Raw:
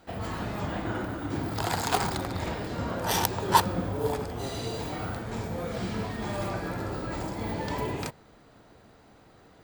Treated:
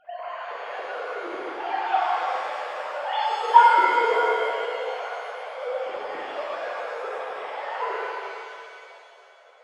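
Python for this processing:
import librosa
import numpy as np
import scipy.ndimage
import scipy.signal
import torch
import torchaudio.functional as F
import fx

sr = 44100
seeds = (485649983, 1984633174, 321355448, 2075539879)

y = fx.sine_speech(x, sr)
y = fx.rev_shimmer(y, sr, seeds[0], rt60_s=2.5, semitones=7, shimmer_db=-8, drr_db=-5.5)
y = y * 10.0 ** (-1.5 / 20.0)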